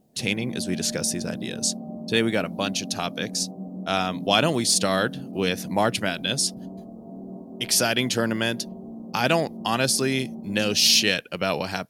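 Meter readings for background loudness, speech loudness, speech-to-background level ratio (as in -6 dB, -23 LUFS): -37.0 LUFS, -23.5 LUFS, 13.5 dB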